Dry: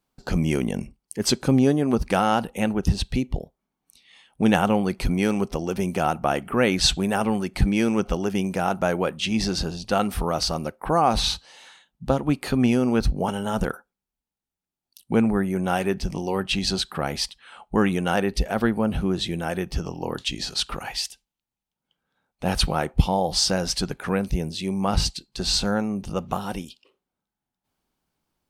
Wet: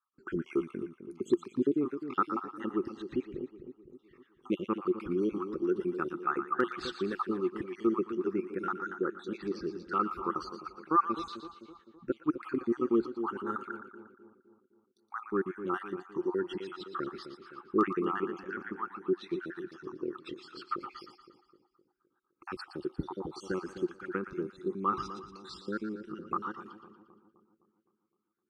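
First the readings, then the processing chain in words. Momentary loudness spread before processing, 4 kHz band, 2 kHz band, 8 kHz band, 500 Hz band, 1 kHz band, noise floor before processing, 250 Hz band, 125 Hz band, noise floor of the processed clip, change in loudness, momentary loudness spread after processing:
9 LU, -23.5 dB, -11.5 dB, under -30 dB, -8.0 dB, -8.0 dB, under -85 dBFS, -10.0 dB, -20.5 dB, -77 dBFS, -10.5 dB, 15 LU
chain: random spectral dropouts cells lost 59%; double band-pass 660 Hz, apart 1.8 oct; hard clip -19.5 dBFS, distortion -38 dB; split-band echo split 830 Hz, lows 0.257 s, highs 0.117 s, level -10 dB; gain +4.5 dB

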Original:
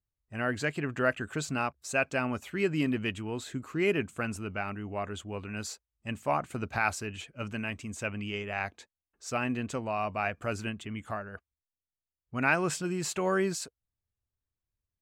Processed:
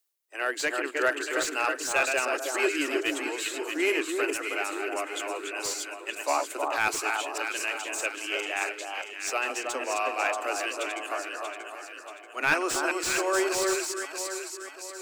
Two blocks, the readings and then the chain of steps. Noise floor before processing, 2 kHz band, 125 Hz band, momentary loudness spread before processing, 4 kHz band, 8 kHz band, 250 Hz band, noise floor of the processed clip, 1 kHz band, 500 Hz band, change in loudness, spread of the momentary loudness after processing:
under -85 dBFS, +5.5 dB, under -20 dB, 10 LU, +9.0 dB, +9.5 dB, -2.0 dB, -44 dBFS, +4.5 dB, +3.5 dB, +4.0 dB, 9 LU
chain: reverse delay 0.205 s, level -6 dB; high shelf 2300 Hz +9 dB; in parallel at -7 dB: one-sided clip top -22.5 dBFS; on the sum: steep high-pass 290 Hz 96 dB/oct; high shelf 10000 Hz +5.5 dB; echo with dull and thin repeats by turns 0.317 s, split 1300 Hz, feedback 66%, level -3.5 dB; reverse; upward compressor, threshold -35 dBFS; reverse; slew limiter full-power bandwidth 320 Hz; gain -2.5 dB

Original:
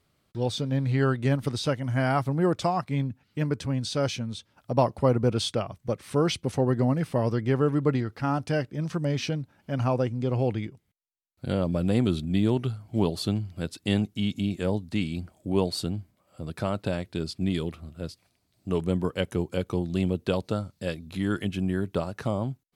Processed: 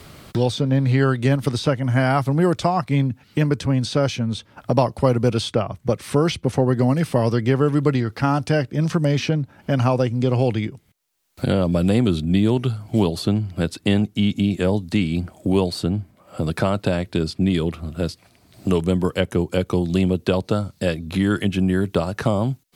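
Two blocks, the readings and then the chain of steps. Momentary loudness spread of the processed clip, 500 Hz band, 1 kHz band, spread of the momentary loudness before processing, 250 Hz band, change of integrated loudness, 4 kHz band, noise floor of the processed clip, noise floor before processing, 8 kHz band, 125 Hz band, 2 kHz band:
7 LU, +6.5 dB, +6.0 dB, 9 LU, +7.0 dB, +6.5 dB, +5.5 dB, -57 dBFS, -71 dBFS, +4.5 dB, +7.0 dB, +7.5 dB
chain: three-band squash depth 70%; gain +6.5 dB

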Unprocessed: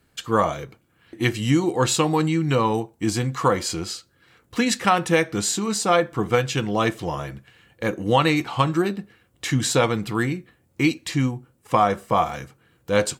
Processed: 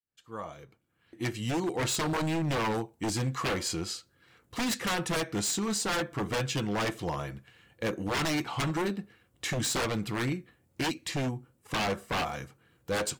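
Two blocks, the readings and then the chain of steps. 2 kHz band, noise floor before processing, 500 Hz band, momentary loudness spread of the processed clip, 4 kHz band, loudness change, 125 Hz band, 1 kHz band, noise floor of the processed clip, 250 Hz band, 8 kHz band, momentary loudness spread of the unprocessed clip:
-7.0 dB, -64 dBFS, -11.0 dB, 13 LU, -5.5 dB, -9.0 dB, -9.0 dB, -11.5 dB, -70 dBFS, -9.0 dB, -6.0 dB, 11 LU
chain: opening faded in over 2.15 s; wavefolder -19 dBFS; gain -5 dB

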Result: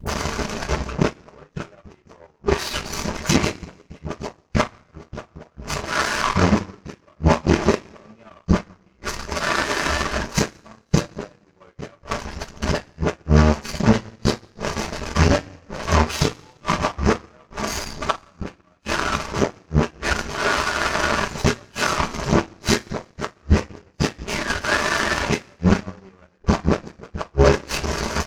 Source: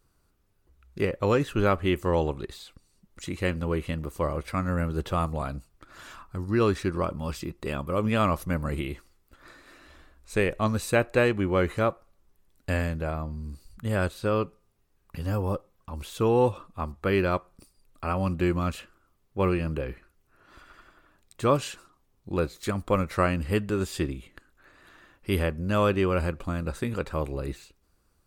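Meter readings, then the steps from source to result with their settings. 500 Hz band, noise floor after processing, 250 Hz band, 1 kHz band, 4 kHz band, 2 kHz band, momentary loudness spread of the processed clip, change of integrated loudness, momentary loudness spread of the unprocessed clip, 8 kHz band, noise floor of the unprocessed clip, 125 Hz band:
+2.5 dB, -59 dBFS, +6.0 dB, +7.0 dB, +13.5 dB, +10.0 dB, 17 LU, +5.5 dB, 14 LU, +15.0 dB, -69 dBFS, +6.0 dB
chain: delta modulation 32 kbps, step -32 dBFS; HPF 110 Hz 6 dB/oct; flipped gate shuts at -22 dBFS, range -33 dB; in parallel at 0 dB: compressor, threshold -51 dBFS, peak gain reduction 21 dB; on the sum: reverb removal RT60 0.74 s; bell 3500 Hz -11.5 dB 0.65 oct; dispersion highs, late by 65 ms, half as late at 330 Hz; on a send: feedback echo 0.167 s, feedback 55%, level -22 dB; on the sum: two-slope reverb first 0.25 s, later 1.6 s, from -18 dB, DRR -9.5 dB; power-law curve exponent 2; maximiser +23 dB; gain -1 dB

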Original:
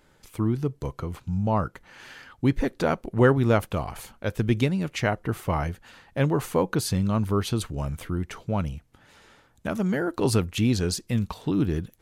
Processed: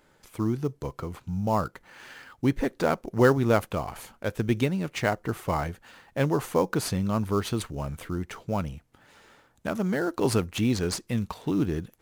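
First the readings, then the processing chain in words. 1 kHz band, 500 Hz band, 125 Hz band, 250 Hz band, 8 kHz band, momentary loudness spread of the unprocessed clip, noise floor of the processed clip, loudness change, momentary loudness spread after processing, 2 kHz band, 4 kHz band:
0.0 dB, -0.5 dB, -4.0 dB, -1.5 dB, -1.5 dB, 11 LU, -64 dBFS, -1.5 dB, 12 LU, -0.5 dB, -2.0 dB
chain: low shelf 160 Hz -7 dB; in parallel at -9.5 dB: sample-rate reducer 6000 Hz, jitter 20%; on the sum: gain -2 dB

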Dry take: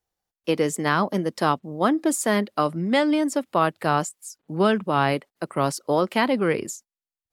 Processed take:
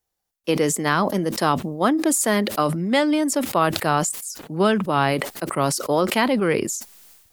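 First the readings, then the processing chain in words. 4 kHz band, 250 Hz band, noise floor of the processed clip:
+4.0 dB, +2.0 dB, -80 dBFS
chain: high shelf 6100 Hz +6.5 dB; sustainer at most 56 dB/s; gain +1 dB

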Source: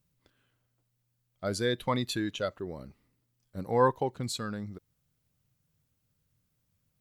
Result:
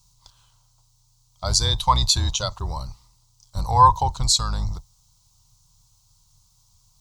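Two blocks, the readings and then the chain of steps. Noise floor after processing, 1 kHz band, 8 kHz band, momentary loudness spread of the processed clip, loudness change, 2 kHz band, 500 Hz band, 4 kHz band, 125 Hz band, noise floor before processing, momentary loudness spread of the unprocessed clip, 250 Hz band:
-62 dBFS, +14.5 dB, +19.0 dB, 18 LU, +10.5 dB, -1.0 dB, -4.0 dB, +16.5 dB, +12.5 dB, -78 dBFS, 18 LU, -4.0 dB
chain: octaver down 2 oct, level +2 dB; EQ curve 120 Hz 0 dB, 250 Hz -18 dB, 450 Hz -16 dB, 650 Hz -5 dB, 970 Hz +11 dB, 1700 Hz -13 dB, 2500 Hz -6 dB, 4100 Hz +11 dB, 6400 Hz +15 dB, 12000 Hz 0 dB; in parallel at +2 dB: limiter -29.5 dBFS, peak gain reduction 20.5 dB; on the sum: gain +5 dB

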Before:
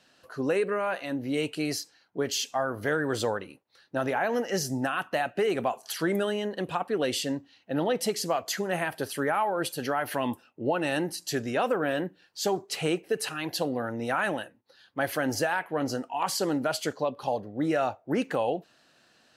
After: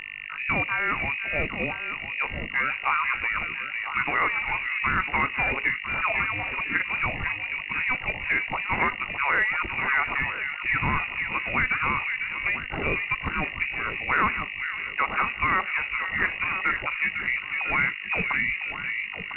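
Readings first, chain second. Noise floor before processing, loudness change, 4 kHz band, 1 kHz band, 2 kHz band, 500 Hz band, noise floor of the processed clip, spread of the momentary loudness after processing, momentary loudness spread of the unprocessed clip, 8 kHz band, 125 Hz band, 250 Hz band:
-63 dBFS, +4.0 dB, -3.0 dB, +3.0 dB, +11.5 dB, -10.5 dB, -36 dBFS, 5 LU, 5 LU, under -40 dB, +0.5 dB, -7.5 dB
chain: tilt +4.5 dB/oct; buzz 50 Hz, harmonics 20, -42 dBFS 0 dB/oct; echo with dull and thin repeats by turns 0.501 s, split 1100 Hz, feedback 51%, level -4 dB; inverted band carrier 2800 Hz; gain +3.5 dB; µ-law 64 kbps 8000 Hz

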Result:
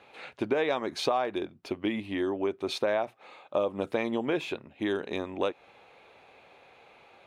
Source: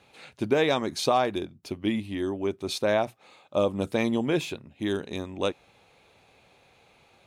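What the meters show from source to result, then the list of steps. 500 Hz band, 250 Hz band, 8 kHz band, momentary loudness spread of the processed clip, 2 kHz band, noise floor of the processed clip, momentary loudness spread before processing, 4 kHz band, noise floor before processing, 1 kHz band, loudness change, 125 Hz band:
-2.5 dB, -4.0 dB, -8.0 dB, 9 LU, -2.0 dB, -60 dBFS, 11 LU, -4.0 dB, -61 dBFS, -3.5 dB, -3.0 dB, -9.0 dB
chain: tone controls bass -12 dB, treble -14 dB; compressor 3:1, threshold -32 dBFS, peak gain reduction 10.5 dB; gain +5.5 dB

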